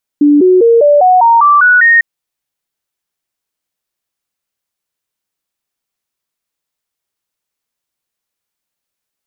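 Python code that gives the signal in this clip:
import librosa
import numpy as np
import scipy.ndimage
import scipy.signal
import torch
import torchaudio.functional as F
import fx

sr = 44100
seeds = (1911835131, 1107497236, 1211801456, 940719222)

y = fx.stepped_sweep(sr, from_hz=292.0, direction='up', per_octave=3, tones=9, dwell_s=0.2, gap_s=0.0, level_db=-3.5)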